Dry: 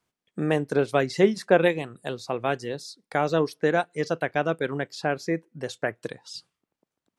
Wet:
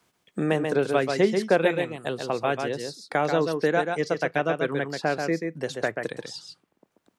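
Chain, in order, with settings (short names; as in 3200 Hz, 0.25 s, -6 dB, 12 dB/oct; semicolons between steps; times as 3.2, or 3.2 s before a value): low shelf 84 Hz -8 dB; echo 0.135 s -6 dB; three-band squash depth 40%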